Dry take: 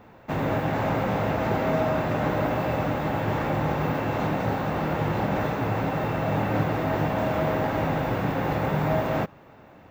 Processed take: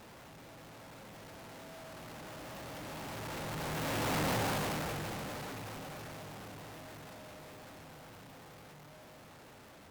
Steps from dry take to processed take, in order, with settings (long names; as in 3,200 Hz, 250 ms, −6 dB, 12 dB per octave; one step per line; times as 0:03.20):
sign of each sample alone
source passing by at 0:04.28, 8 m/s, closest 3.5 metres
harmonic generator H 3 −19 dB, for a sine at −21 dBFS
level −4.5 dB